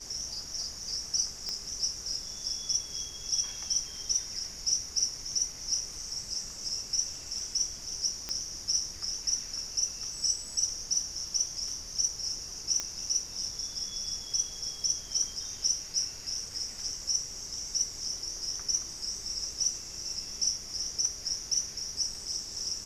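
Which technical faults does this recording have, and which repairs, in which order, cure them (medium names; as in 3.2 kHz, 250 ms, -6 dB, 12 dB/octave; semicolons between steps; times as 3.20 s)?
1.49 s: pop -21 dBFS
8.29 s: pop -19 dBFS
12.80 s: pop -17 dBFS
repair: de-click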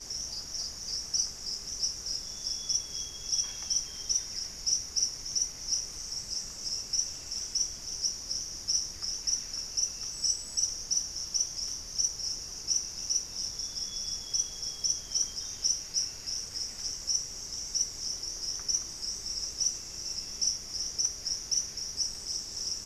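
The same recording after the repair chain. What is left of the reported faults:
1.49 s: pop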